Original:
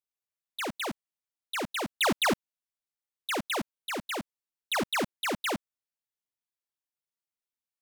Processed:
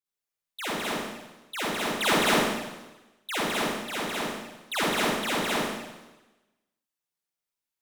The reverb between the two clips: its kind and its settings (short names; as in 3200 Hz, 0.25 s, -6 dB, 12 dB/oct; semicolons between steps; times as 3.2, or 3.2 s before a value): Schroeder reverb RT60 1.1 s, DRR -7.5 dB; gain -4 dB